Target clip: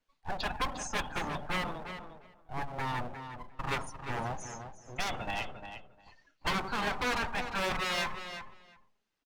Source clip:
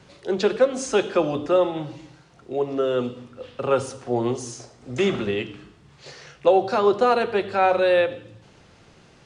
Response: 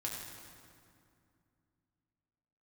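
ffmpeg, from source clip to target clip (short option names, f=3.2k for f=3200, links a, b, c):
-filter_complex "[0:a]afftdn=nr=26:nf=-33,equalizer=f=150:w=0.86:g=-11,acrossover=split=990[a][b];[a]aeval=exprs='abs(val(0))':c=same[c];[c][b]amix=inputs=2:normalize=0,aeval=exprs='0.422*(cos(1*acos(clip(val(0)/0.422,-1,1)))-cos(1*PI/2))+0.0422*(cos(3*acos(clip(val(0)/0.422,-1,1)))-cos(3*PI/2))+0.0075*(cos(5*acos(clip(val(0)/0.422,-1,1)))-cos(5*PI/2))':c=same,aeval=exprs='0.075*(abs(mod(val(0)/0.075+3,4)-2)-1)':c=same,asplit=2[d][e];[e]adelay=352,lowpass=f=4.8k:p=1,volume=-9dB,asplit=2[f][g];[g]adelay=352,lowpass=f=4.8k:p=1,volume=0.15[h];[f][h]amix=inputs=2:normalize=0[i];[d][i]amix=inputs=2:normalize=0,volume=-1dB" -ar 48000 -c:a libopus -b:a 48k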